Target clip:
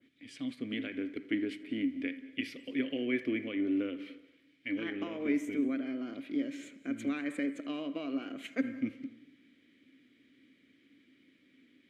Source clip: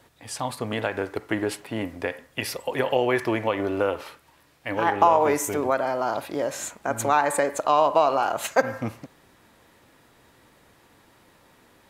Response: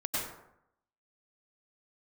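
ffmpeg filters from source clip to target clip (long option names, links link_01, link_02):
-filter_complex "[0:a]adynamicequalizer=threshold=0.00708:dfrequency=4500:dqfactor=0.73:tfrequency=4500:tqfactor=0.73:attack=5:release=100:ratio=0.375:range=3:mode=cutabove:tftype=bell,asplit=3[link_01][link_02][link_03];[link_01]bandpass=frequency=270:width_type=q:width=8,volume=0dB[link_04];[link_02]bandpass=frequency=2290:width_type=q:width=8,volume=-6dB[link_05];[link_03]bandpass=frequency=3010:width_type=q:width=8,volume=-9dB[link_06];[link_04][link_05][link_06]amix=inputs=3:normalize=0,asplit=2[link_07][link_08];[1:a]atrim=start_sample=2205,adelay=80[link_09];[link_08][link_09]afir=irnorm=-1:irlink=0,volume=-22.5dB[link_10];[link_07][link_10]amix=inputs=2:normalize=0,volume=4.5dB"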